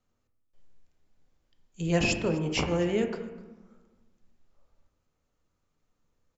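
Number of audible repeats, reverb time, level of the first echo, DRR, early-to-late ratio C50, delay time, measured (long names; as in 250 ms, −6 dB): 1, 1.1 s, −21.5 dB, 5.0 dB, 8.0 dB, 252 ms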